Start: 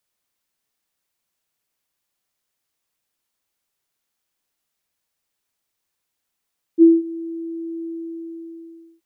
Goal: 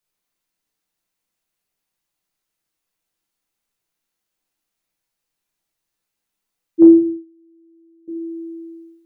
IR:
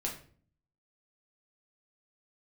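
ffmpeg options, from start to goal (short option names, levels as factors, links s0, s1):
-filter_complex "[0:a]asettb=1/sr,asplit=3[s0][s1][s2];[s0]atrim=end=6.824[s3];[s1]atrim=start=6.82:end=8.08,asetpts=PTS-STARTPTS,afade=t=in:d=0.004:c=qsin,afade=t=out:st=1.256:d=0.004:c=qsin,agate=range=0.0447:threshold=0.0891:ratio=16:detection=peak[s4];[s2]atrim=start=8.076[s5];[s3][s4]acrossfade=d=0.004:c1=hsin:c2=qsin[s6];[s6][s5]acrossfade=d=0.004:c1=qsin:c2=hsin[s7];[1:a]atrim=start_sample=2205,afade=t=out:st=0.39:d=0.01,atrim=end_sample=17640[s8];[s7][s8]afir=irnorm=-1:irlink=0,volume=0.708"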